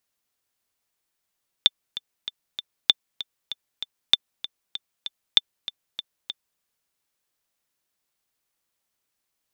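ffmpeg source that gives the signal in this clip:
ffmpeg -f lavfi -i "aevalsrc='pow(10,(-1-16*gte(mod(t,4*60/194),60/194))/20)*sin(2*PI*3550*mod(t,60/194))*exp(-6.91*mod(t,60/194)/0.03)':duration=4.94:sample_rate=44100" out.wav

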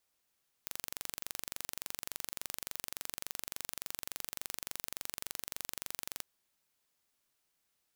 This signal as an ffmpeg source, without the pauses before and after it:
ffmpeg -f lavfi -i "aevalsrc='0.282*eq(mod(n,1877),0)':duration=5.54:sample_rate=44100" out.wav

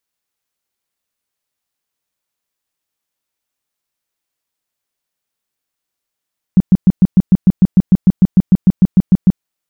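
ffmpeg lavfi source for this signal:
ffmpeg -f lavfi -i "aevalsrc='0.708*sin(2*PI*186*mod(t,0.15))*lt(mod(t,0.15),6/186)':duration=2.85:sample_rate=44100" out.wav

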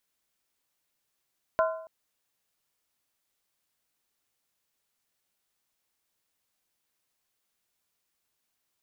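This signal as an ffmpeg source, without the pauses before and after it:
ffmpeg -f lavfi -i "aevalsrc='0.1*pow(10,-3*t/0.65)*sin(2*PI*646*t)+0.0631*pow(10,-3*t/0.515)*sin(2*PI*1029.7*t)+0.0398*pow(10,-3*t/0.445)*sin(2*PI*1379.9*t)+0.0251*pow(10,-3*t/0.429)*sin(2*PI*1483.2*t)':duration=0.28:sample_rate=44100" out.wav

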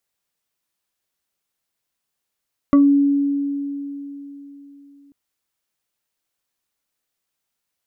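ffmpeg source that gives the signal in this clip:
ffmpeg -f lavfi -i "aevalsrc='0.398*pow(10,-3*t/3.63)*sin(2*PI*282*t+0.6*pow(10,-3*t/0.21)*sin(2*PI*3.03*282*t))':duration=2.39:sample_rate=44100" out.wav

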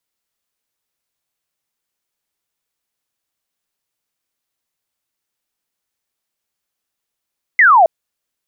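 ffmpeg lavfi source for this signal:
ffmpeg -f lavfi -i "aevalsrc='0.531*clip(t/0.002,0,1)*clip((0.27-t)/0.002,0,1)*sin(2*PI*2100*0.27/log(620/2100)*(exp(log(620/2100)*t/0.27)-1))':duration=0.27:sample_rate=44100" out.wav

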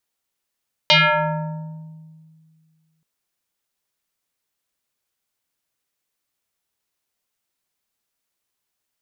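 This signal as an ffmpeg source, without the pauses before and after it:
ffmpeg -f lavfi -i "aevalsrc='0.355*pow(10,-3*t/2.18)*sin(2*PI*159*t+5.6*pow(10,-3*t/1.75)*sin(2*PI*4.78*159*t))':duration=2.13:sample_rate=44100" out.wav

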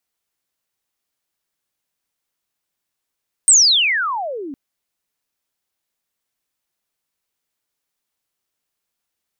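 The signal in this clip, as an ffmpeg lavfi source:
ffmpeg -f lavfi -i "aevalsrc='pow(10,(-6-21.5*t/1.06)/20)*sin(2*PI*8700*1.06/log(260/8700)*(exp(log(260/8700)*t/1.06)-1))':duration=1.06:sample_rate=44100" out.wav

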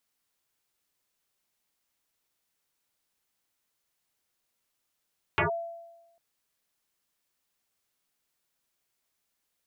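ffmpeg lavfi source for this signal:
ffmpeg -f lavfi -i "aevalsrc='0.1*pow(10,-3*t/1.07)*sin(2*PI*675*t+9*clip(1-t/0.12,0,1)*sin(2*PI*0.38*675*t))':duration=0.8:sample_rate=44100" out.wav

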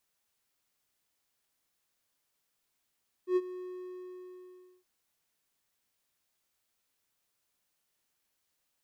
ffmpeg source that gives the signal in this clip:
ffmpeg -f lavfi -i "aevalsrc='0.1*(1-4*abs(mod(365*t+0.25,1)-0.5))':duration=1.57:sample_rate=44100,afade=type=in:duration=0.094,afade=type=out:start_time=0.094:duration=0.042:silence=0.15,afade=type=out:start_time=0.32:duration=1.25" out.wav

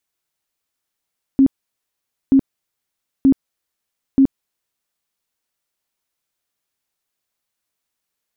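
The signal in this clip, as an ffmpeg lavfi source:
ffmpeg -f lavfi -i "aevalsrc='0.422*sin(2*PI*270*mod(t,0.93))*lt(mod(t,0.93),20/270)':duration=3.72:sample_rate=44100" out.wav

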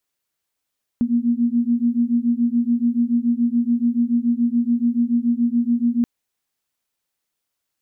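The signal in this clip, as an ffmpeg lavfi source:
ffmpeg -f lavfi -i "aevalsrc='0.112*(sin(2*PI*234*t)+sin(2*PI*241*t))':duration=5.03:sample_rate=44100" out.wav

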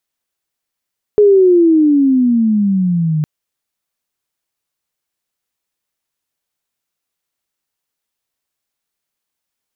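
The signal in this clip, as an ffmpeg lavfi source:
ffmpeg -f lavfi -i "aevalsrc='pow(10,(-4.5-8*t/2.06)/20)*sin(2*PI*423*2.06/(-18*log(2)/12)*(exp(-18*log(2)/12*t/2.06)-1))':duration=2.06:sample_rate=44100" out.wav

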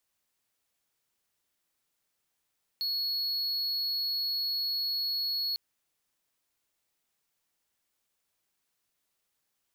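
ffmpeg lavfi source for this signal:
ffmpeg -f lavfi -i "aevalsrc='0.0473*(1-4*abs(mod(4350*t+0.25,1)-0.5))':duration=2.75:sample_rate=44100" out.wav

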